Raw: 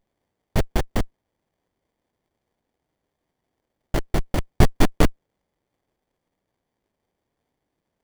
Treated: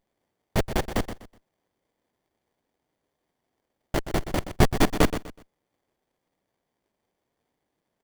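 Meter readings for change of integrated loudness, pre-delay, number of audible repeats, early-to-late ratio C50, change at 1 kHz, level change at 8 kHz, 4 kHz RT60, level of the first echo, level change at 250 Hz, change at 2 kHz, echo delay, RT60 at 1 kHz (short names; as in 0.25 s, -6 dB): -2.0 dB, none, 3, none, 0.0 dB, +0.5 dB, none, -11.0 dB, -1.5 dB, +0.5 dB, 0.124 s, none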